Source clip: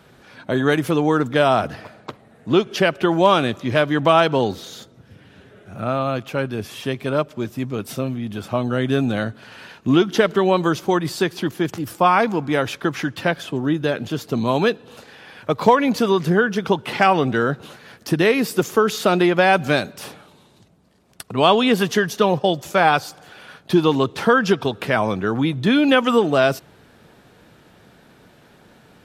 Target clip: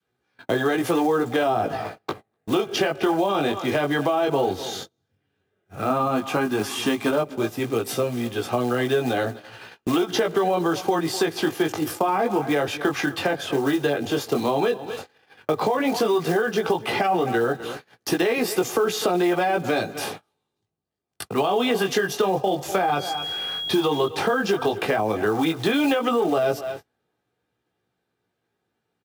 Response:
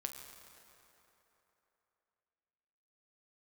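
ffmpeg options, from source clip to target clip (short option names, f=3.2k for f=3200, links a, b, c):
-filter_complex "[0:a]highpass=f=68:w=0.5412,highpass=f=68:w=1.3066,flanger=delay=16.5:depth=4.8:speed=0.11,asettb=1/sr,asplit=3[a][b][c];[a]atrim=end=5.904[d];[b]atrim=start=5.9:end=7.11,asetpts=PTS-STARTPTS,afade=t=in:d=0.004:c=qsin,afade=t=out:st=1.206:d=0.004:c=qsin,equalizer=f=250:t=o:w=1:g=10,equalizer=f=500:t=o:w=1:g=-7,equalizer=f=1k:t=o:w=1:g=8,equalizer=f=8k:t=o:w=1:g=6[e];[c]atrim=start=7.106[f];[d][e]acrossfade=d=0.004:c1=hsin:c2=qsin[g];[g][f]acrossfade=d=0.004:c1=qsin:c2=hsin,asettb=1/sr,asplit=3[h][i][j];[h]atrim=end=22.834[k];[i]atrim=start=22.83:end=24.09,asetpts=PTS-STARTPTS,afade=t=in:d=0.004:c=qsin,afade=t=out:st=1.256:d=0.004:c=qsin,aeval=exprs='val(0)+0.02*sin(2*PI*3300*n/s)':c=same[l];[j]atrim=start=24.086[m];[k][l]acrossfade=d=0.004:c1=hsin:c2=qsin[n];[n][m]acrossfade=d=0.004:c1=qsin:c2=hsin,acrusher=bits=6:mode=log:mix=0:aa=0.000001,aecho=1:1:2.5:0.37,asplit=2[o][p];[p]aecho=0:1:249:0.0841[q];[o][q]amix=inputs=2:normalize=0,adynamicequalizer=threshold=0.0224:dfrequency=690:dqfactor=1.5:tfrequency=690:tqfactor=1.5:attack=5:release=100:ratio=0.375:range=3.5:mode=boostabove:tftype=bell,alimiter=limit=-11.5dB:level=0:latency=1:release=49,acrossover=split=210|430[r][s][t];[r]acompressor=threshold=-44dB:ratio=4[u];[s]acompressor=threshold=-33dB:ratio=4[v];[t]acompressor=threshold=-31dB:ratio=4[w];[u][v][w]amix=inputs=3:normalize=0,agate=range=-31dB:threshold=-41dB:ratio=16:detection=peak,volume=7dB"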